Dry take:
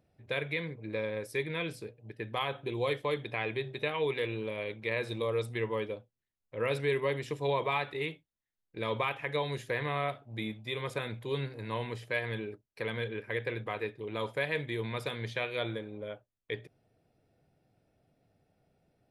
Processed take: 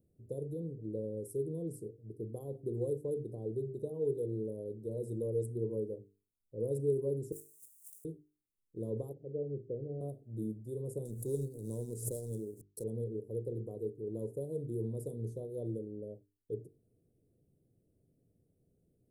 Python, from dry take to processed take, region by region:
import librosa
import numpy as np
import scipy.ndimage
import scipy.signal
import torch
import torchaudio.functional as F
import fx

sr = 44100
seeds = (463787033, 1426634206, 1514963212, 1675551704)

y = fx.chain(x, sr, fx.block_float(bits=3),
    fx.cheby2_highpass(hz=2600.0, order=4, stop_db=40),
    fx.over_compress(threshold_db=-57.0, ratio=-1.0), at=(7.32, 8.05))
y = fx.chain(y, sr, fx.steep_lowpass(hz=640.0, slope=36),
    fx.low_shelf(hz=210.0, db=-5.0), at=(9.13, 10.01))
y = fx.chain(y, sr, fx.law_mismatch(coded='A'),
    fx.peak_eq(hz=7200.0, db=13.5, octaves=2.9),
    fx.pre_swell(db_per_s=86.0), at=(11.05, 12.84))
y = scipy.signal.sosfilt(scipy.signal.ellip(3, 1.0, 80, [430.0, 8500.0], 'bandstop', fs=sr, output='sos'), y)
y = fx.hum_notches(y, sr, base_hz=50, count=9)
y = y * 10.0 ** (1.0 / 20.0)